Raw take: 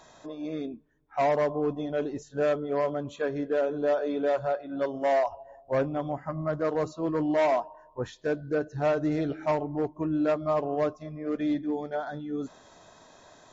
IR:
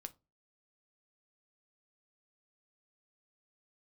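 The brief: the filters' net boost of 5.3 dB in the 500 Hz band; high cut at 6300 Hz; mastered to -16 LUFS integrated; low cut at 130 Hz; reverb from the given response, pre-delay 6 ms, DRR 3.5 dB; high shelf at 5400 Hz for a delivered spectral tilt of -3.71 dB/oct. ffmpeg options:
-filter_complex "[0:a]highpass=130,lowpass=6.3k,equalizer=f=500:t=o:g=6.5,highshelf=f=5.4k:g=8.5,asplit=2[a][b];[1:a]atrim=start_sample=2205,adelay=6[c];[b][c]afir=irnorm=-1:irlink=0,volume=1.5dB[d];[a][d]amix=inputs=2:normalize=0,volume=8dB"

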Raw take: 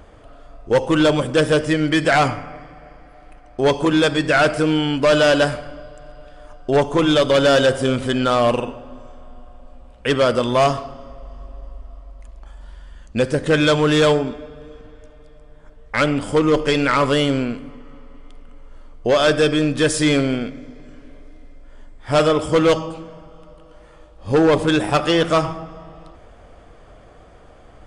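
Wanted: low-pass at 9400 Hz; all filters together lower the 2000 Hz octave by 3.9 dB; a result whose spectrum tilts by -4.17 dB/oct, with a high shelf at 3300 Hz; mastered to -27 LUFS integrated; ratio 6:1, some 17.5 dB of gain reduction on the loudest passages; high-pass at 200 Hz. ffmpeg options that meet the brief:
-af "highpass=200,lowpass=9.4k,equalizer=f=2k:t=o:g=-4,highshelf=f=3.3k:g=-5,acompressor=threshold=-32dB:ratio=6,volume=9dB"

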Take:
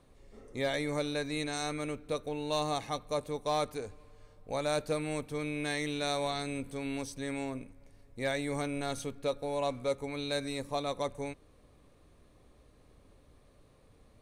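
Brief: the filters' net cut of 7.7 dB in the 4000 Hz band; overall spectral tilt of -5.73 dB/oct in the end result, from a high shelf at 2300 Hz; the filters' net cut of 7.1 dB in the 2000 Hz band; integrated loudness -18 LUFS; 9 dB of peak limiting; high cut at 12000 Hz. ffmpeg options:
-af "lowpass=12k,equalizer=f=2k:t=o:g=-6,highshelf=f=2.3k:g=-3.5,equalizer=f=4k:t=o:g=-4,volume=24dB,alimiter=limit=-7.5dB:level=0:latency=1"

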